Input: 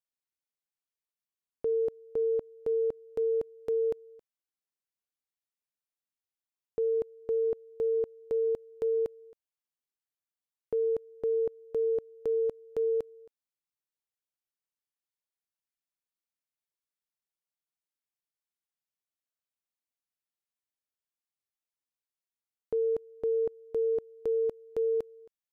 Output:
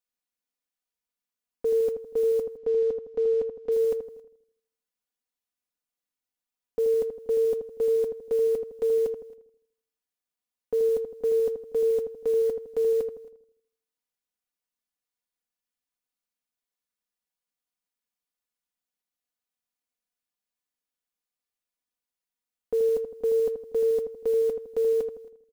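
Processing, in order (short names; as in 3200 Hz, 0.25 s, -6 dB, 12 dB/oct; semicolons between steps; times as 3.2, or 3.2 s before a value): comb 4.1 ms, depth 85%; modulation noise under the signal 29 dB; 2.57–3.72 air absorption 130 m; darkening echo 80 ms, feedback 48%, low-pass 990 Hz, level -5.5 dB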